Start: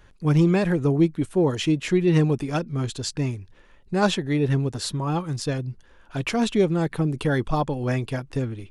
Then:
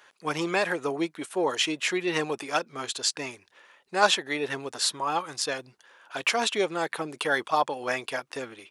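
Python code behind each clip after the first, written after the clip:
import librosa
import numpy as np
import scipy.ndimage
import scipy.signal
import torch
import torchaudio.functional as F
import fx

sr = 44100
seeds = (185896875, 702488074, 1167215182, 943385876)

y = scipy.signal.sosfilt(scipy.signal.butter(2, 710.0, 'highpass', fs=sr, output='sos'), x)
y = y * librosa.db_to_amplitude(4.5)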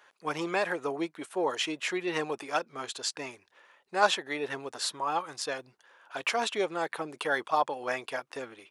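y = fx.peak_eq(x, sr, hz=810.0, db=5.0, octaves=2.8)
y = y * librosa.db_to_amplitude(-7.0)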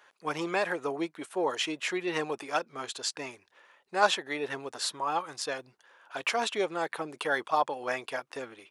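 y = x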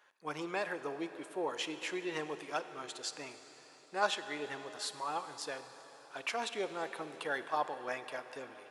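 y = fx.rev_plate(x, sr, seeds[0], rt60_s=4.3, hf_ratio=0.95, predelay_ms=0, drr_db=10.0)
y = y * librosa.db_to_amplitude(-7.5)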